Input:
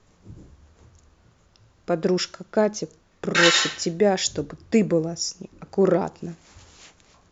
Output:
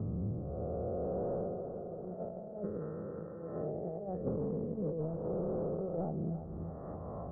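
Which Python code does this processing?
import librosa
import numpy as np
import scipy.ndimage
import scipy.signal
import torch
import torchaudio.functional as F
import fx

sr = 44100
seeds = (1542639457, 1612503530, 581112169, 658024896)

y = fx.spec_swells(x, sr, rise_s=2.42)
y = fx.doppler_pass(y, sr, speed_mps=8, closest_m=4.6, pass_at_s=2.25)
y = scipy.signal.sosfilt(scipy.signal.butter(2, 54.0, 'highpass', fs=sr, output='sos'), y)
y = y + 0.47 * np.pad(y, (int(1.6 * sr / 1000.0), 0))[:len(y)]
y = fx.over_compress(y, sr, threshold_db=-36.0, ratio=-0.5)
y = np.clip(10.0 ** (30.5 / 20.0) * y, -1.0, 1.0) / 10.0 ** (30.5 / 20.0)
y = scipy.ndimage.gaussian_filter1d(y, 11.0, mode='constant')
y = fx.echo_feedback(y, sr, ms=334, feedback_pct=21, wet_db=-15)
y = fx.band_squash(y, sr, depth_pct=100)
y = F.gain(torch.from_numpy(y), 1.5).numpy()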